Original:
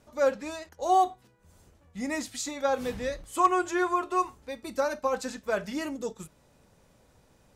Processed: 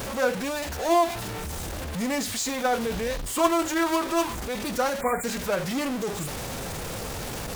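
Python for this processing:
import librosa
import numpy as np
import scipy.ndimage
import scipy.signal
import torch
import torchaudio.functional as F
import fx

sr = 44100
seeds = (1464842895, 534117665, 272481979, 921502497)

y = x + 0.5 * 10.0 ** (-27.0 / 20.0) * np.sign(x)
y = fx.spec_erase(y, sr, start_s=5.01, length_s=0.23, low_hz=2600.0, high_hz=6900.0)
y = fx.pitch_keep_formants(y, sr, semitones=-1.5)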